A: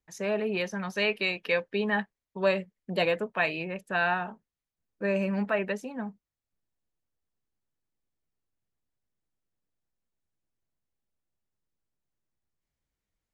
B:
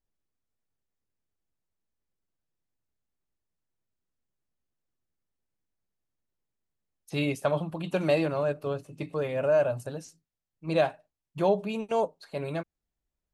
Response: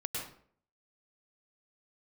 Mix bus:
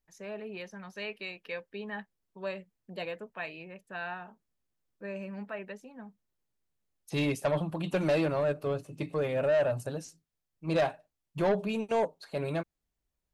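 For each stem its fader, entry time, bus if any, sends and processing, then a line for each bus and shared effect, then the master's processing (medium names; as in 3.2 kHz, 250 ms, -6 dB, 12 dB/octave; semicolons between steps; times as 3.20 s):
-11.5 dB, 0.00 s, no send, none
+1.0 dB, 0.00 s, no send, saturation -22 dBFS, distortion -13 dB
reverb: none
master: none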